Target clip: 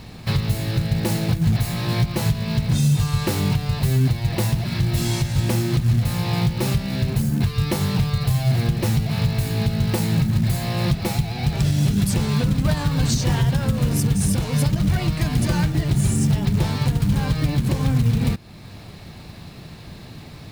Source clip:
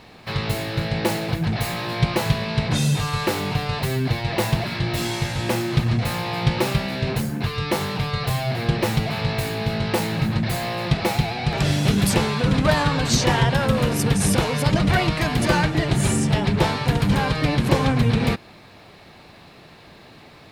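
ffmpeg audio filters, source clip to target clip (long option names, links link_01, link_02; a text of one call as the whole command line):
ffmpeg -i in.wav -af "bass=frequency=250:gain=14,treble=frequency=4000:gain=8,alimiter=limit=-10.5dB:level=0:latency=1:release=425,acrusher=bits=6:mode=log:mix=0:aa=0.000001" out.wav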